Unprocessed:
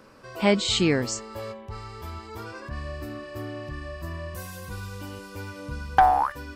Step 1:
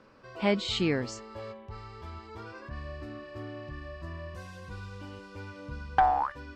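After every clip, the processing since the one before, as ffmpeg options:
-af "lowpass=4700,volume=0.531"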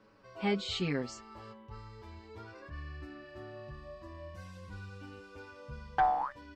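-filter_complex "[0:a]asplit=2[s0][s1];[s1]adelay=6.7,afreqshift=-0.47[s2];[s0][s2]amix=inputs=2:normalize=1,volume=0.794"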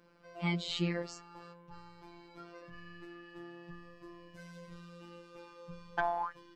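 -af "afftfilt=real='hypot(re,im)*cos(PI*b)':imag='0':win_size=1024:overlap=0.75,volume=1.26"

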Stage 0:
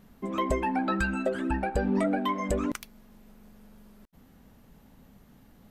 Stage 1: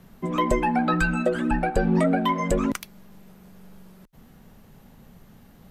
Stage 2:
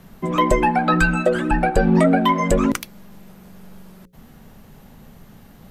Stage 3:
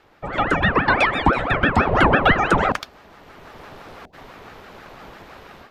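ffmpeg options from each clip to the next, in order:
-af "afreqshift=-23,volume=1.88"
-af "bandreject=f=60:t=h:w=6,bandreject=f=120:t=h:w=6,bandreject=f=180:t=h:w=6,bandreject=f=240:t=h:w=6,bandreject=f=300:t=h:w=6,bandreject=f=360:t=h:w=6,bandreject=f=420:t=h:w=6,bandreject=f=480:t=h:w=6,bandreject=f=540:t=h:w=6,volume=2"
-filter_complex "[0:a]acrossover=split=260 5000:gain=0.0891 1 0.112[s0][s1][s2];[s0][s1][s2]amix=inputs=3:normalize=0,dynaudnorm=f=400:g=3:m=5.01,aeval=exprs='val(0)*sin(2*PI*620*n/s+620*0.7/6*sin(2*PI*6*n/s))':c=same"

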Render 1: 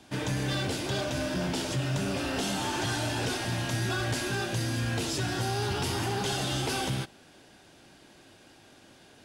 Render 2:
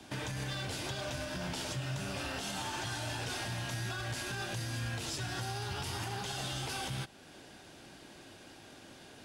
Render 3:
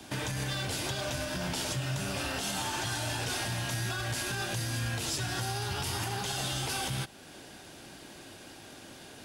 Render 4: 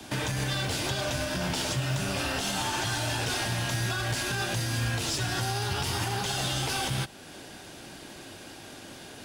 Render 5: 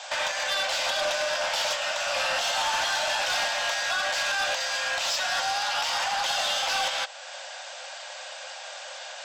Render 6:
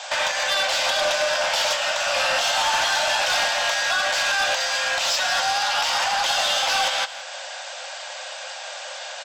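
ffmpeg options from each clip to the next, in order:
-filter_complex "[0:a]acrossover=split=170|550|4600[s0][s1][s2][s3];[s1]acompressor=threshold=0.00631:ratio=6[s4];[s0][s4][s2][s3]amix=inputs=4:normalize=0,alimiter=level_in=2.11:limit=0.0631:level=0:latency=1:release=336,volume=0.473,volume=1.26"
-af "highshelf=f=10000:g=9,volume=1.58"
-filter_complex "[0:a]acrossover=split=130|7200[s0][s1][s2];[s0]acrusher=bits=2:mode=log:mix=0:aa=0.000001[s3];[s2]aeval=exprs='(tanh(141*val(0)+0.3)-tanh(0.3))/141':c=same[s4];[s3][s1][s4]amix=inputs=3:normalize=0,volume=1.58"
-filter_complex "[0:a]afftfilt=real='re*between(b*sr/4096,500,8200)':imag='im*between(b*sr/4096,500,8200)':win_size=4096:overlap=0.75,acrossover=split=6200[s0][s1];[s1]acompressor=threshold=0.00398:ratio=4:attack=1:release=60[s2];[s0][s2]amix=inputs=2:normalize=0,asoftclip=type=tanh:threshold=0.0376,volume=2.51"
-af "aecho=1:1:168:0.188,volume=1.78"

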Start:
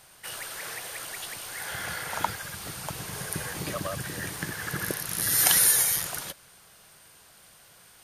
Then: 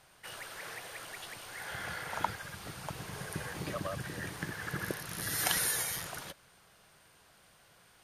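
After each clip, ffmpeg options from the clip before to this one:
-af "aemphasis=mode=reproduction:type=cd,volume=0.596"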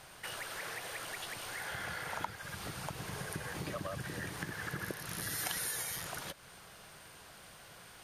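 -af "acompressor=threshold=0.00316:ratio=2.5,volume=2.51"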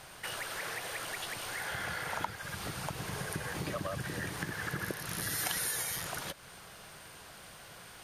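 -af "aeval=exprs='0.141*(cos(1*acos(clip(val(0)/0.141,-1,1)))-cos(1*PI/2))+0.00447*(cos(5*acos(clip(val(0)/0.141,-1,1)))-cos(5*PI/2))':c=same,volume=1.26"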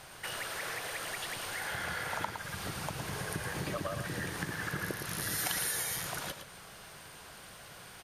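-af "aecho=1:1:112:0.398"

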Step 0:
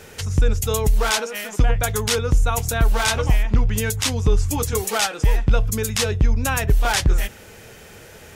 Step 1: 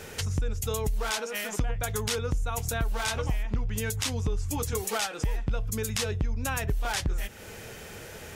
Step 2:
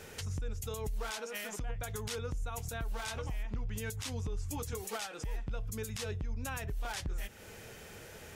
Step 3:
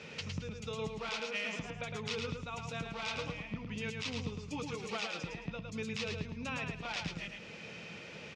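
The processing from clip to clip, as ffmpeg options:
-af "acompressor=threshold=0.0355:ratio=3"
-af "alimiter=limit=0.0891:level=0:latency=1:release=101,volume=0.447"
-af "highpass=160,equalizer=f=170:t=q:w=4:g=8,equalizer=f=390:t=q:w=4:g=-6,equalizer=f=770:t=q:w=4:g=-6,equalizer=f=1600:t=q:w=4:g=-7,equalizer=f=2500:t=q:w=4:g=7,lowpass=f=5200:w=0.5412,lowpass=f=5200:w=1.3066,aecho=1:1:109|218|327|436:0.562|0.163|0.0473|0.0137,volume=1.33"

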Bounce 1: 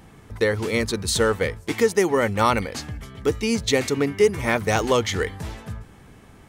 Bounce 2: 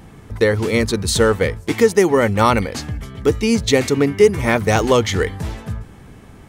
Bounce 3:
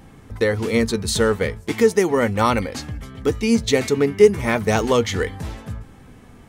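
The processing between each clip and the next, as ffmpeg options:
-af "lowshelf=f=490:g=4,volume=1.5"
-af "flanger=delay=3.7:depth=1.1:regen=72:speed=0.35:shape=sinusoidal,volume=1.12"

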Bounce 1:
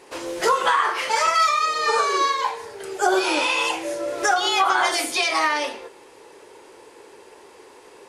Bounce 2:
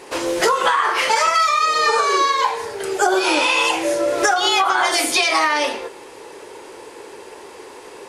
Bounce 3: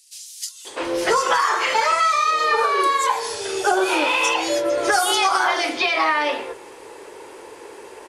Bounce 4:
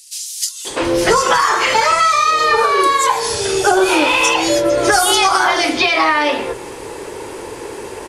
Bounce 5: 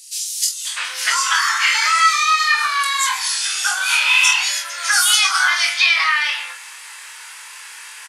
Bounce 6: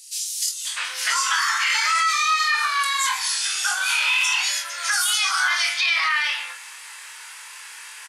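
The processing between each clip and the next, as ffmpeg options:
-af "acompressor=threshold=0.0794:ratio=6,volume=2.66"
-filter_complex "[0:a]acrossover=split=180|4400[s0][s1][s2];[s1]adelay=650[s3];[s0]adelay=700[s4];[s4][s3][s2]amix=inputs=3:normalize=0,volume=0.841"
-filter_complex "[0:a]bass=f=250:g=13,treble=f=4000:g=3,asplit=2[s0][s1];[s1]acompressor=threshold=0.0447:ratio=6,volume=1.12[s2];[s0][s2]amix=inputs=2:normalize=0,volume=1.33"
-filter_complex "[0:a]highpass=f=1400:w=0.5412,highpass=f=1400:w=1.3066,asplit=2[s0][s1];[s1]aecho=0:1:23|46:0.596|0.398[s2];[s0][s2]amix=inputs=2:normalize=0"
-af "alimiter=limit=0.355:level=0:latency=1:release=14,volume=0.708"

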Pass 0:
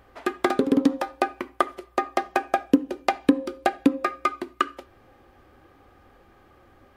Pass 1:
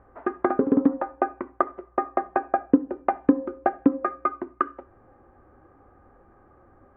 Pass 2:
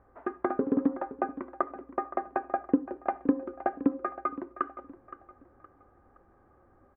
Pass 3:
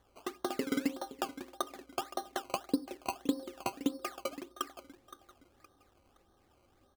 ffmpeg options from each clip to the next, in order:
-af "lowpass=f=1500:w=0.5412,lowpass=f=1500:w=1.3066"
-af "aecho=1:1:518|1036|1554:0.178|0.064|0.023,volume=0.473"
-af "acrusher=samples=17:mix=1:aa=0.000001:lfo=1:lforange=17:lforate=1.7,volume=0.473"

